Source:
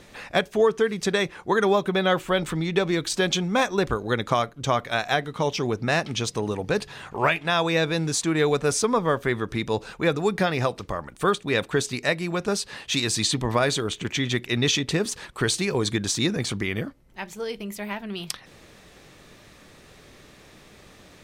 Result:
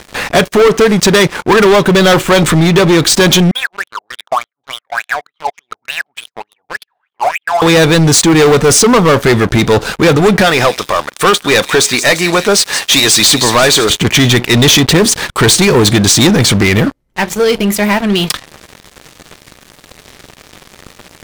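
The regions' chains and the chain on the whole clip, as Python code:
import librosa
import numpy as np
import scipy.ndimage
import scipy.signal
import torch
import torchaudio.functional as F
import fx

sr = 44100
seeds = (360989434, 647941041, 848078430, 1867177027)

y = fx.chain(x, sr, fx.law_mismatch(coded='A'),
    fx.wah_lfo(hz=3.4, low_hz=700.0, high_hz=3400.0, q=14.0), at=(3.51, 7.62))
y = fx.chain(y, sr, fx.highpass(hz=530.0, slope=6),
    fx.echo_wet_highpass(ms=173, feedback_pct=58, hz=3400.0, wet_db=-10.0), at=(10.41, 13.9))
y = fx.notch(y, sr, hz=2600.0, q=29.0)
y = fx.leveller(y, sr, passes=5)
y = y * 10.0 ** (4.0 / 20.0)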